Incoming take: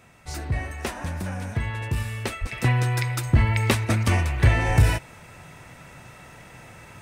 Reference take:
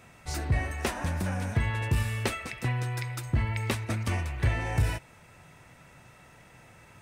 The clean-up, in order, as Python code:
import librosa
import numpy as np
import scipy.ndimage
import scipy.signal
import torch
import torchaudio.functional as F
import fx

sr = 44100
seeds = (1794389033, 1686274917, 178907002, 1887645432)

y = fx.fix_deplosive(x, sr, at_s=(2.4, 3.34, 4.67))
y = fx.fix_level(y, sr, at_s=2.52, step_db=-8.5)